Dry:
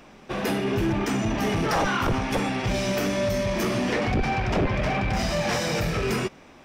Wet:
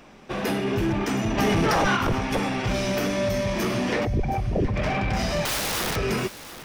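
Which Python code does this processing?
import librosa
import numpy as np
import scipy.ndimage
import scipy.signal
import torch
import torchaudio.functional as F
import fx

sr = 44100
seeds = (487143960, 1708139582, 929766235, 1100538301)

p1 = fx.envelope_sharpen(x, sr, power=3.0, at=(4.04, 4.75), fade=0.02)
p2 = fx.overflow_wrap(p1, sr, gain_db=22.0, at=(5.45, 5.96))
p3 = fx.dynamic_eq(p2, sr, hz=7500.0, q=7.8, threshold_db=-53.0, ratio=4.0, max_db=-4)
p4 = p3 + fx.echo_single(p3, sr, ms=720, db=-14.5, dry=0)
y = fx.env_flatten(p4, sr, amount_pct=100, at=(1.37, 1.95), fade=0.02)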